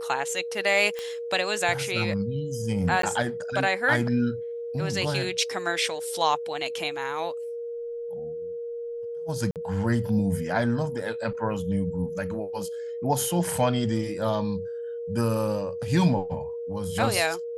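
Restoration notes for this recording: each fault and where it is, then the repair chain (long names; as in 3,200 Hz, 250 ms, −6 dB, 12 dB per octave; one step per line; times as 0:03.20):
whistle 470 Hz −31 dBFS
0:00.99: click −18 dBFS
0:03.02–0:03.03: drop-out 13 ms
0:09.51–0:09.56: drop-out 48 ms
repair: click removal
notch filter 470 Hz, Q 30
repair the gap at 0:03.02, 13 ms
repair the gap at 0:09.51, 48 ms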